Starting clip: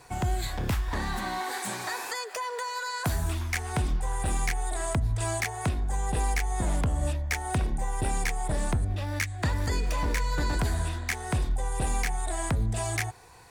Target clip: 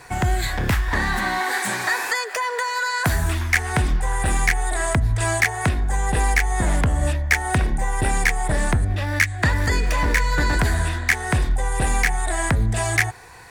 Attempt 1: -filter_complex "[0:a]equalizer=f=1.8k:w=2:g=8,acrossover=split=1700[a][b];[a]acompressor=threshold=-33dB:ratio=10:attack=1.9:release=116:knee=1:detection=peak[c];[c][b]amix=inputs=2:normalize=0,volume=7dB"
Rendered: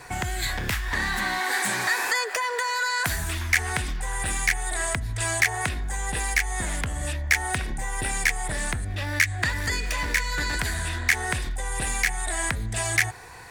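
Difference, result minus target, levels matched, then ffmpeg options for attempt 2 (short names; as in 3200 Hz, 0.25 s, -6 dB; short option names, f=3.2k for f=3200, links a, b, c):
compressor: peak gain reduction +12 dB
-af "equalizer=f=1.8k:w=2:g=8,volume=7dB"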